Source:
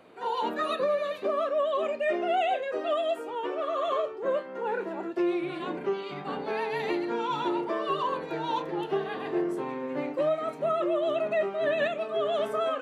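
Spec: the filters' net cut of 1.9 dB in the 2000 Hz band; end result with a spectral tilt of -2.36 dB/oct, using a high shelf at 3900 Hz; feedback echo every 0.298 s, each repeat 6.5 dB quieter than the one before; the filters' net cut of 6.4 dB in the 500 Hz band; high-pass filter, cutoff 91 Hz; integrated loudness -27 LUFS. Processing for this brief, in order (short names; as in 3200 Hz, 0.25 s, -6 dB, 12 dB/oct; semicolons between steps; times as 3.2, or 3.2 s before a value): HPF 91 Hz; bell 500 Hz -9 dB; bell 2000 Hz -3.5 dB; high shelf 3900 Hz +6.5 dB; feedback echo 0.298 s, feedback 47%, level -6.5 dB; gain +5.5 dB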